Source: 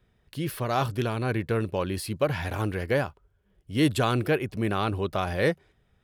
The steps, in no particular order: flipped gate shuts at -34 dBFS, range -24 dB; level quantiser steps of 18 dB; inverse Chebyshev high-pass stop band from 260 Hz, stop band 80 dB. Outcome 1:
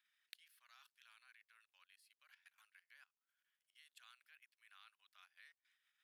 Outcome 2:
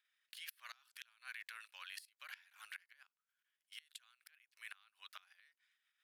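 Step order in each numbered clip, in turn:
flipped gate > level quantiser > inverse Chebyshev high-pass; level quantiser > inverse Chebyshev high-pass > flipped gate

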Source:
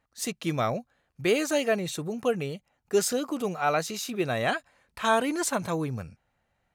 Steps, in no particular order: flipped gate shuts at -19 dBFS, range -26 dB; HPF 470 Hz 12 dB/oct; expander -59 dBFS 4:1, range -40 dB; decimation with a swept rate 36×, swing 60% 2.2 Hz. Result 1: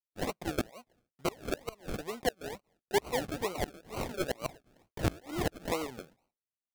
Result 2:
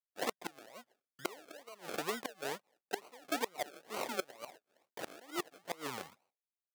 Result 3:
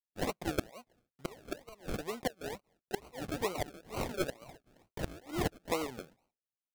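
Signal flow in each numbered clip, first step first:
expander > HPF > decimation with a swept rate > flipped gate; flipped gate > expander > decimation with a swept rate > HPF; expander > HPF > flipped gate > decimation with a swept rate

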